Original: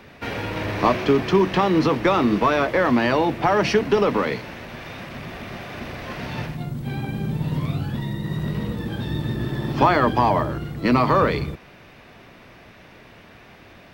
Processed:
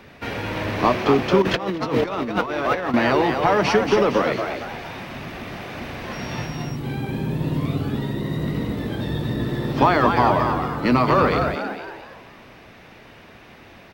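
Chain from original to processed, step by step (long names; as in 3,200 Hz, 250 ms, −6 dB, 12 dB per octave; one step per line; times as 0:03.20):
on a send: echo with shifted repeats 229 ms, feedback 41%, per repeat +130 Hz, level −6 dB
0:01.42–0:02.94: on the sum: compressor whose output falls as the input rises −22 dBFS, ratio −0.5
0:06.12–0:06.75: steady tone 5,600 Hz −43 dBFS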